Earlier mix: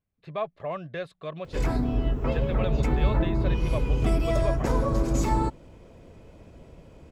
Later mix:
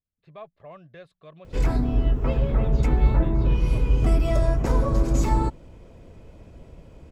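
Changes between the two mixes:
speech -11.5 dB; master: add low shelf 91 Hz +6.5 dB

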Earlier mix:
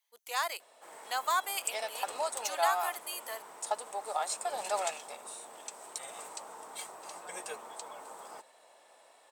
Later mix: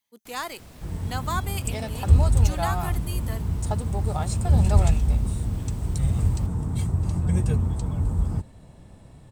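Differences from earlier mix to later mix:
first sound: unmuted; master: remove HPF 580 Hz 24 dB/oct

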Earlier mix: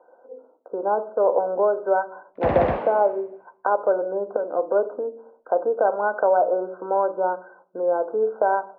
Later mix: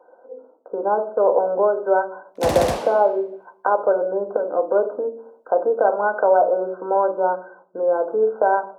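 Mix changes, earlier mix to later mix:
speech: send +6.5 dB; master: remove LPF 2300 Hz 24 dB/oct

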